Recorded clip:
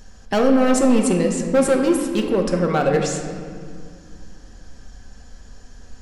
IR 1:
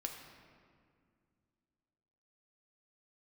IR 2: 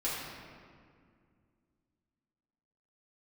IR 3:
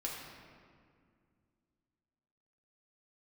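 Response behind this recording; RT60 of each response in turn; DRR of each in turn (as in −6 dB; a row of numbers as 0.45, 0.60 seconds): 1; 2.2, 2.1, 2.1 seconds; 2.0, −9.0, −3.5 decibels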